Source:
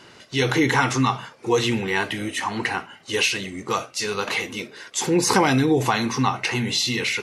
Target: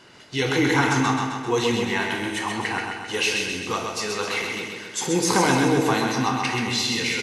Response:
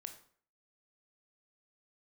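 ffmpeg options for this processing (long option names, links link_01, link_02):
-filter_complex "[0:a]aecho=1:1:131|262|393|524|655|786|917|1048:0.596|0.351|0.207|0.122|0.0722|0.0426|0.0251|0.0148[link_01];[1:a]atrim=start_sample=2205[link_02];[link_01][link_02]afir=irnorm=-1:irlink=0,volume=2.5dB"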